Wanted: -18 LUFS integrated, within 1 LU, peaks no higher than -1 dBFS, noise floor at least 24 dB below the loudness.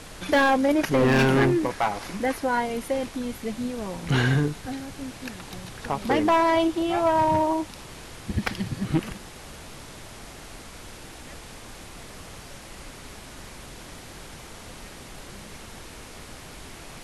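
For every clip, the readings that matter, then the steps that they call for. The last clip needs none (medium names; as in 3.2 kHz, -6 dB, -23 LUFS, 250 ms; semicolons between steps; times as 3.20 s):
clipped samples 1.3%; clipping level -15.5 dBFS; noise floor -43 dBFS; noise floor target -48 dBFS; loudness -24.0 LUFS; peak level -15.5 dBFS; loudness target -18.0 LUFS
-> clip repair -15.5 dBFS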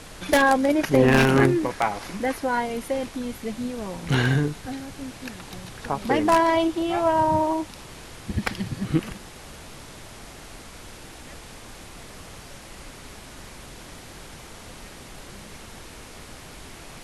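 clipped samples 0.0%; noise floor -43 dBFS; noise floor target -47 dBFS
-> noise print and reduce 6 dB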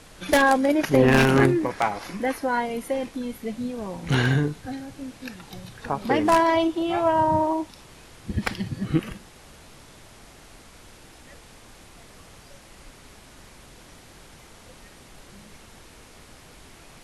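noise floor -49 dBFS; loudness -23.0 LUFS; peak level -6.5 dBFS; loudness target -18.0 LUFS
-> trim +5 dB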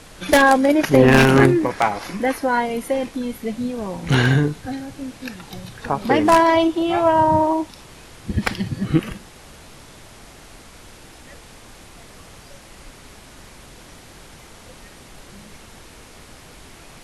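loudness -18.0 LUFS; peak level -1.5 dBFS; noise floor -44 dBFS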